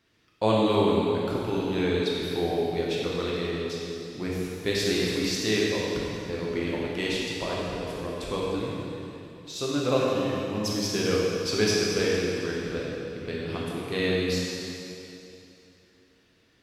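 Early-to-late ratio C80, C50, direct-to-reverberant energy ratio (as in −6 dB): −0.5 dB, −2.5 dB, −5.5 dB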